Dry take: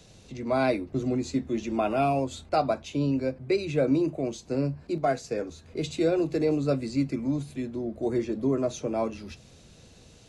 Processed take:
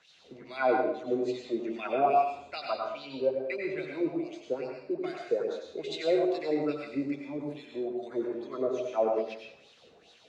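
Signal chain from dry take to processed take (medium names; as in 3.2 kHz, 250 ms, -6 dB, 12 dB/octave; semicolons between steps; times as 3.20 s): wah-wah 2.4 Hz 420–3800 Hz, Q 3.7; plate-style reverb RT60 0.63 s, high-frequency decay 0.95×, pre-delay 80 ms, DRR 0.5 dB; trim +5.5 dB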